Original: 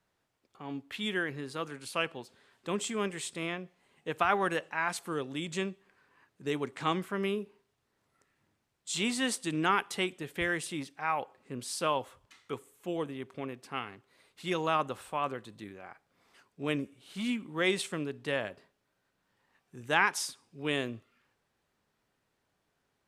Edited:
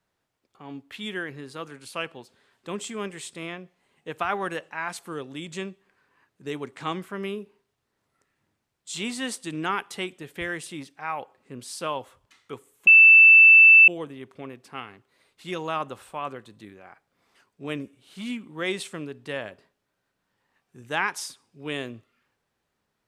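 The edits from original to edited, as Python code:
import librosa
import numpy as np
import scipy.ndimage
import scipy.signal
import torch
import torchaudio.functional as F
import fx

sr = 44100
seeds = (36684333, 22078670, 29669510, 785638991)

y = fx.edit(x, sr, fx.insert_tone(at_s=12.87, length_s=1.01, hz=2650.0, db=-8.5), tone=tone)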